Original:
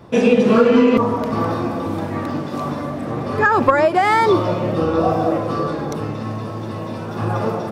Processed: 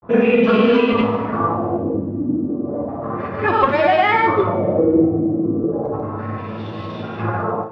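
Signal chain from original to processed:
auto-filter low-pass sine 0.33 Hz 280–3,500 Hz
granular cloud, pitch spread up and down by 0 semitones
coupled-rooms reverb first 0.54 s, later 1.7 s, from −17 dB, DRR 3.5 dB
level −2 dB

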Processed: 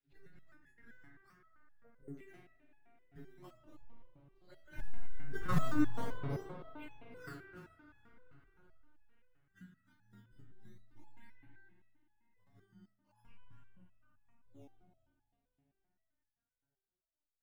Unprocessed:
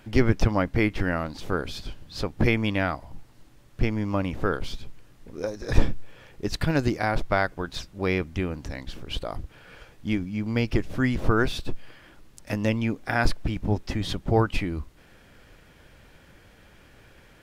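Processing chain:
partials spread apart or drawn together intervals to 85%
source passing by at 0:05.49, 59 m/s, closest 7.4 metres
parametric band 1,800 Hz +3 dB 0.74 octaves
auto-filter low-pass saw down 0.46 Hz 400–4,600 Hz
thirty-one-band graphic EQ 125 Hz +10 dB, 500 Hz −10 dB, 1,600 Hz +6 dB
phaser swept by the level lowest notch 180 Hz, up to 3,700 Hz, full sweep at −44.5 dBFS
in parallel at −6.5 dB: sample-and-hold swept by an LFO 15×, swing 160% 0.41 Hz
on the sum: hum removal 45.12 Hz, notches 29
convolution reverb RT60 3.8 s, pre-delay 35 ms, DRR 3.5 dB
step-sequenced resonator 7.7 Hz 140–840 Hz
level +8 dB

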